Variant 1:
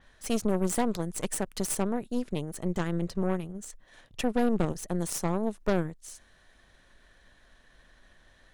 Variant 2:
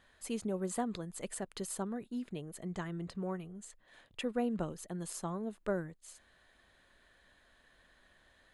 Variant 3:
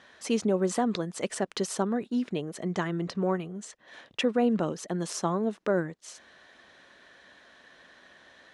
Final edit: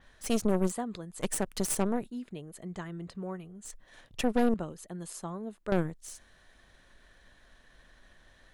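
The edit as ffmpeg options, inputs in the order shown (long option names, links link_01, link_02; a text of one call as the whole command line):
ffmpeg -i take0.wav -i take1.wav -filter_complex "[1:a]asplit=3[link_01][link_02][link_03];[0:a]asplit=4[link_04][link_05][link_06][link_07];[link_04]atrim=end=0.73[link_08];[link_01]atrim=start=0.67:end=1.24[link_09];[link_05]atrim=start=1.18:end=2.102[link_10];[link_02]atrim=start=2.098:end=3.652[link_11];[link_06]atrim=start=3.648:end=4.542[link_12];[link_03]atrim=start=4.538:end=5.722[link_13];[link_07]atrim=start=5.718[link_14];[link_08][link_09]acrossfade=duration=0.06:curve1=tri:curve2=tri[link_15];[link_15][link_10]acrossfade=duration=0.06:curve1=tri:curve2=tri[link_16];[link_16][link_11]acrossfade=duration=0.004:curve1=hsin:curve2=hsin[link_17];[link_17][link_12]acrossfade=duration=0.004:curve1=hsin:curve2=hsin[link_18];[link_18][link_13]acrossfade=duration=0.004:curve1=hsin:curve2=hsin[link_19];[link_19][link_14]acrossfade=duration=0.004:curve1=hsin:curve2=hsin" out.wav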